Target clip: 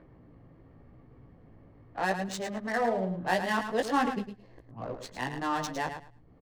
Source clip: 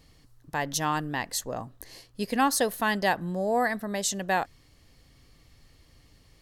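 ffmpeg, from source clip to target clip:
ffmpeg -i in.wav -filter_complex "[0:a]areverse,highshelf=frequency=5800:gain=-3.5,acrossover=split=100|2100[link_01][link_02][link_03];[link_02]acompressor=mode=upward:threshold=-41dB:ratio=2.5[link_04];[link_01][link_04][link_03]amix=inputs=3:normalize=0,flanger=delay=15.5:depth=3.1:speed=0.94,adynamicsmooth=sensitivity=7.5:basefreq=980,aecho=1:1:108|216|324:0.376|0.0677|0.0122" out.wav

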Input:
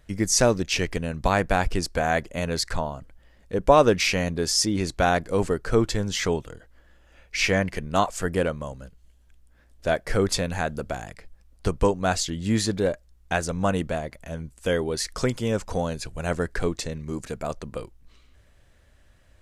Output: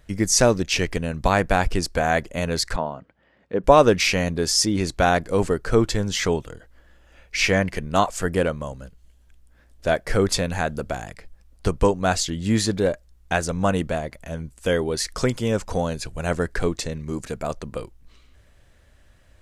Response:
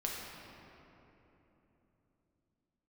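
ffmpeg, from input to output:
-filter_complex "[0:a]asettb=1/sr,asplit=3[link_01][link_02][link_03];[link_01]atrim=end=2.764[link_04];[link_02]atrim=start=2.76:end=3.64,asetpts=PTS-STARTPTS,afade=type=in:duration=0.004:curve=qsin,afade=type=out:start_time=0.876:duration=0.004:curve=qsin,highpass=160,lowpass=2700[link_05];[link_03]atrim=start=3.636[link_06];[link_04][link_05]acrossfade=duration=0.004:curve1=hsin:curve2=qsin[link_07];[link_07][link_06]acrossfade=duration=0.004:curve1=qsin:curve2=hsin,volume=2.5dB"

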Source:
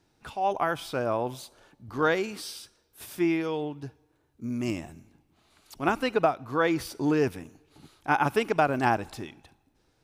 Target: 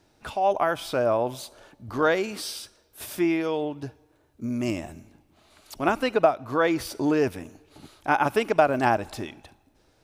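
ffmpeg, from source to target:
ffmpeg -i in.wav -filter_complex "[0:a]equalizer=frequency=150:width_type=o:width=0.39:gain=-4.5,asplit=2[link_01][link_02];[link_02]acompressor=threshold=-35dB:ratio=6,volume=-1dB[link_03];[link_01][link_03]amix=inputs=2:normalize=0,equalizer=frequency=610:width_type=o:width=0.27:gain=6.5" out.wav

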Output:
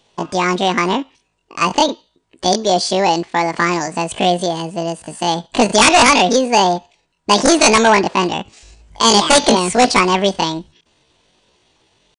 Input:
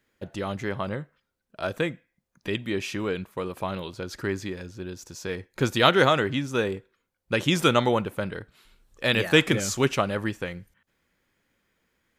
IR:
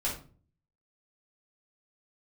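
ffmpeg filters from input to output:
-af "aresample=11025,aeval=exprs='0.668*sin(PI/2*3.98*val(0)/0.668)':channel_layout=same,aresample=44100,asetrate=80880,aresample=44100,atempo=0.545254,volume=-1dB"

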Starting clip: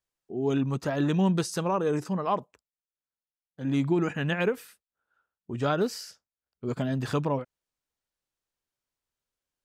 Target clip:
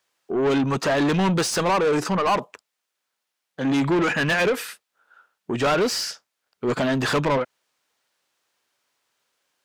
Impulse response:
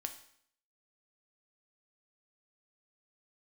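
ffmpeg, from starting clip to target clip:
-filter_complex "[0:a]highpass=82,asplit=2[link_01][link_02];[link_02]highpass=frequency=720:poles=1,volume=26dB,asoftclip=type=tanh:threshold=-13dB[link_03];[link_01][link_03]amix=inputs=2:normalize=0,lowpass=frequency=4500:poles=1,volume=-6dB"

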